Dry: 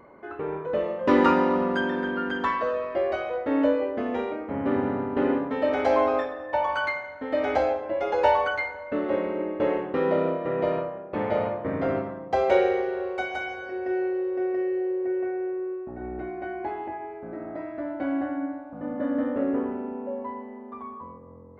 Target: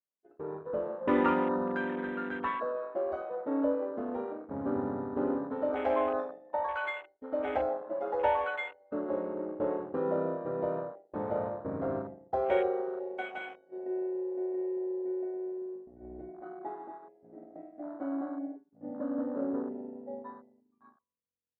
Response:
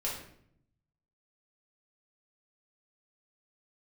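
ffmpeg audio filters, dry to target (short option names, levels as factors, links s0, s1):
-af "afwtdn=0.0282,agate=range=0.0224:threshold=0.0316:ratio=3:detection=peak,volume=0.447"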